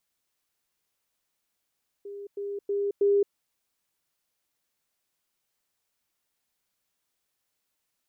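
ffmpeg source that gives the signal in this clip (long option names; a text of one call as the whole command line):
ffmpeg -f lavfi -i "aevalsrc='pow(10,(-36.5+6*floor(t/0.32))/20)*sin(2*PI*403*t)*clip(min(mod(t,0.32),0.22-mod(t,0.32))/0.005,0,1)':duration=1.28:sample_rate=44100" out.wav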